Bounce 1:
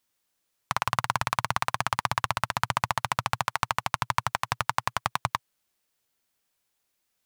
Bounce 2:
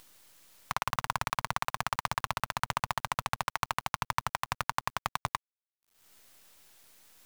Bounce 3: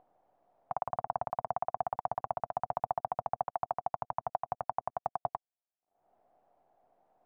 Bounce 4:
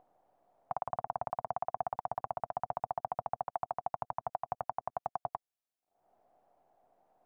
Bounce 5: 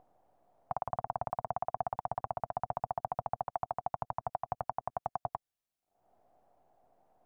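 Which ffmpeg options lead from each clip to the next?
-af "acompressor=mode=upward:threshold=-30dB:ratio=2.5,acrusher=bits=6:dc=4:mix=0:aa=0.000001,volume=-5dB"
-af "lowpass=f=720:t=q:w=7.1,lowshelf=f=89:g=-10,volume=-6dB"
-af "alimiter=limit=-20.5dB:level=0:latency=1:release=161"
-af "lowshelf=f=180:g=8.5"

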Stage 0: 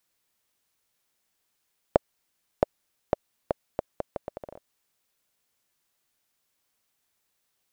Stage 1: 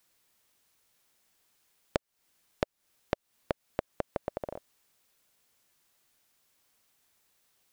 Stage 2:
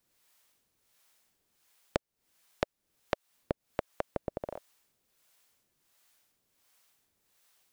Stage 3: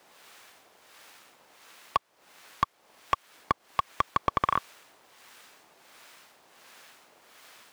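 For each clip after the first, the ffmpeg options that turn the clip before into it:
-af "acompressor=threshold=-33dB:ratio=6,volume=5dB"
-filter_complex "[0:a]acrossover=split=530[a][b];[a]aeval=exprs='val(0)*(1-0.7/2+0.7/2*cos(2*PI*1.4*n/s))':c=same[c];[b]aeval=exprs='val(0)*(1-0.7/2-0.7/2*cos(2*PI*1.4*n/s))':c=same[d];[c][d]amix=inputs=2:normalize=0,volume=3dB"
-filter_complex "[0:a]aeval=exprs='val(0)*sin(2*PI*530*n/s)':c=same,asplit=2[a][b];[b]highpass=f=720:p=1,volume=32dB,asoftclip=type=tanh:threshold=-12.5dB[c];[a][c]amix=inputs=2:normalize=0,lowpass=f=1.4k:p=1,volume=-6dB,volume=4.5dB"

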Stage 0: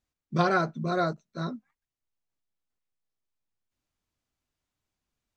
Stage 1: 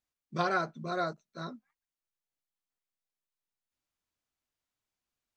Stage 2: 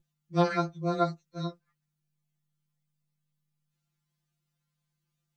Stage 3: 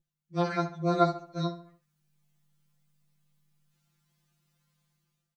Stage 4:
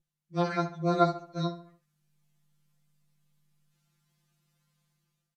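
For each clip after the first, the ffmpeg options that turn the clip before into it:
-af "lowshelf=f=320:g=-8.5,volume=-3.5dB"
-af "aeval=exprs='val(0)+0.000794*(sin(2*PI*50*n/s)+sin(2*PI*2*50*n/s)/2+sin(2*PI*3*50*n/s)/3+sin(2*PI*4*50*n/s)/4+sin(2*PI*5*50*n/s)/5)':c=same,afftfilt=real='re*2.83*eq(mod(b,8),0)':imag='im*2.83*eq(mod(b,8),0)':win_size=2048:overlap=0.75,volume=4.5dB"
-filter_complex "[0:a]dynaudnorm=f=250:g=5:m=15.5dB,asplit=2[a][b];[b]adelay=70,lowpass=f=3.3k:p=1,volume=-11.5dB,asplit=2[c][d];[d]adelay=70,lowpass=f=3.3k:p=1,volume=0.43,asplit=2[e][f];[f]adelay=70,lowpass=f=3.3k:p=1,volume=0.43,asplit=2[g][h];[h]adelay=70,lowpass=f=3.3k:p=1,volume=0.43[i];[c][e][g][i]amix=inputs=4:normalize=0[j];[a][j]amix=inputs=2:normalize=0,volume=-6.5dB"
-af "aresample=32000,aresample=44100"

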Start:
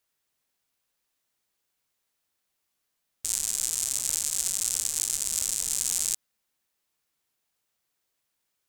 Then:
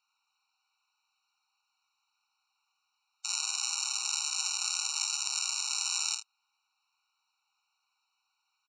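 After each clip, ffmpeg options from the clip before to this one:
-af "lowpass=f=5.4k:w=0.5412,lowpass=f=5.4k:w=1.3066,aecho=1:1:50|77:0.447|0.15,afftfilt=real='re*eq(mod(floor(b*sr/1024/750),2),1)':imag='im*eq(mod(floor(b*sr/1024/750),2),1)':win_size=1024:overlap=0.75,volume=7.5dB"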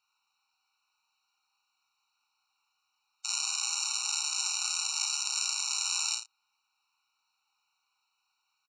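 -filter_complex "[0:a]asplit=2[a][b];[b]adelay=35,volume=-6dB[c];[a][c]amix=inputs=2:normalize=0"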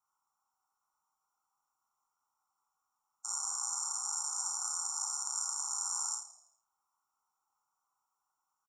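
-filter_complex "[0:a]asuperstop=centerf=3000:order=8:qfactor=0.59,asplit=6[a][b][c][d][e][f];[b]adelay=82,afreqshift=-38,volume=-13.5dB[g];[c]adelay=164,afreqshift=-76,volume=-20.1dB[h];[d]adelay=246,afreqshift=-114,volume=-26.6dB[i];[e]adelay=328,afreqshift=-152,volume=-33.2dB[j];[f]adelay=410,afreqshift=-190,volume=-39.7dB[k];[a][g][h][i][j][k]amix=inputs=6:normalize=0"

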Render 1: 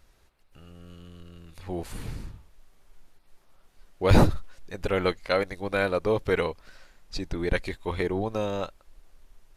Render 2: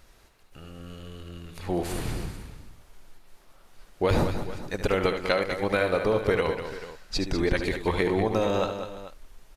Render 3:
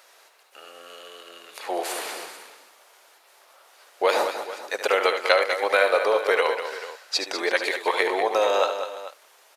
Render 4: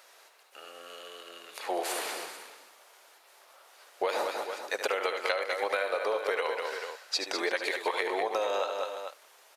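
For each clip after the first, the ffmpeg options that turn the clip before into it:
-af "lowshelf=f=140:g=-4,acompressor=threshold=-27dB:ratio=8,aecho=1:1:73|197|332|439:0.335|0.355|0.112|0.168,volume=6.5dB"
-af "highpass=f=500:w=0.5412,highpass=f=500:w=1.3066,volume=7dB"
-af "acompressor=threshold=-23dB:ratio=12,volume=-2.5dB"

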